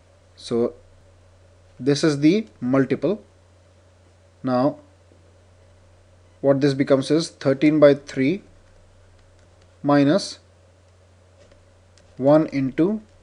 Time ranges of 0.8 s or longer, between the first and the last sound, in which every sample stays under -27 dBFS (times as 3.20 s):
0.69–1.81 s
3.15–4.45 s
4.72–6.44 s
8.37–9.84 s
10.32–12.20 s